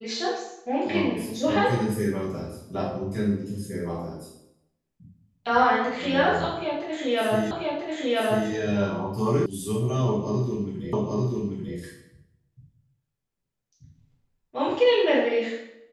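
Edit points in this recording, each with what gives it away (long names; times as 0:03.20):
0:07.51: the same again, the last 0.99 s
0:09.46: cut off before it has died away
0:10.93: the same again, the last 0.84 s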